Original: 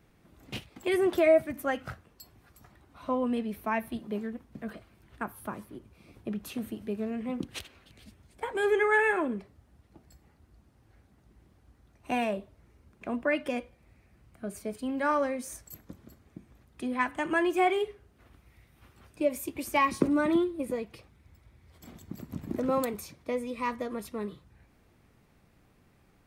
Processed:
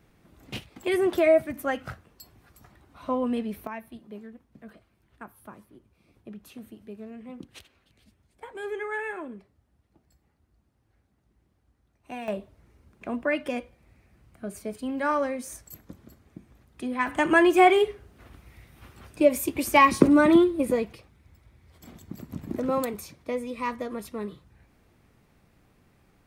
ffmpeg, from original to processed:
-af "asetnsamples=n=441:p=0,asendcmd='3.67 volume volume -8dB;12.28 volume volume 1.5dB;17.07 volume volume 8dB;20.93 volume volume 1.5dB',volume=2dB"

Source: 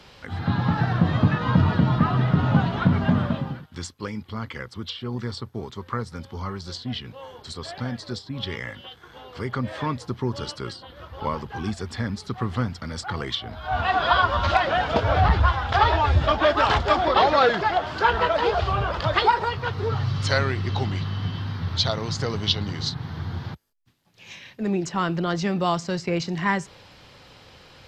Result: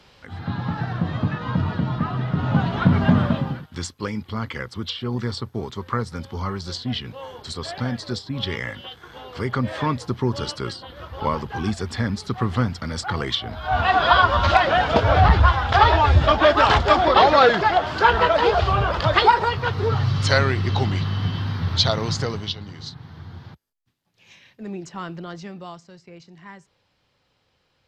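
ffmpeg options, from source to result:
-af "volume=4dB,afade=t=in:st=2.3:d=0.74:silence=0.398107,afade=t=out:st=22.1:d=0.44:silence=0.251189,afade=t=out:st=25.07:d=0.83:silence=0.281838"

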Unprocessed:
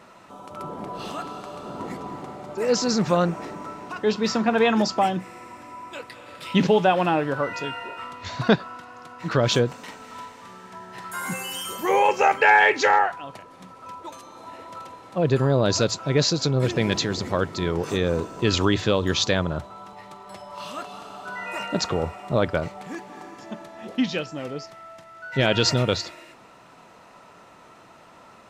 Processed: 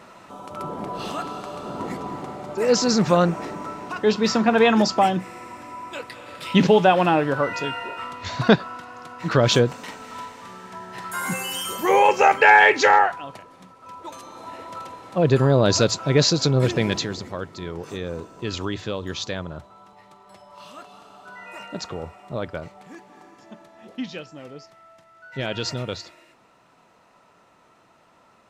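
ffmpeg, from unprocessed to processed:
-af "volume=11dB,afade=t=out:st=13.04:d=0.75:silence=0.398107,afade=t=in:st=13.79:d=0.44:silence=0.398107,afade=t=out:st=16.59:d=0.72:silence=0.298538"

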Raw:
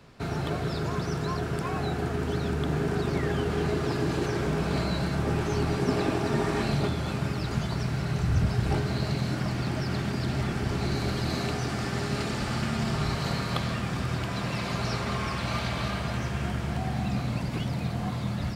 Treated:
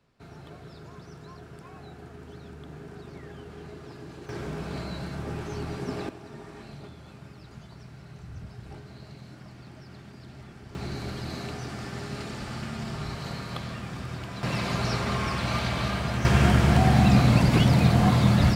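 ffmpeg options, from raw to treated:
-af "asetnsamples=n=441:p=0,asendcmd='4.29 volume volume -7dB;6.09 volume volume -17dB;10.75 volume volume -6dB;14.43 volume volume 2dB;16.25 volume volume 11dB',volume=-15.5dB"

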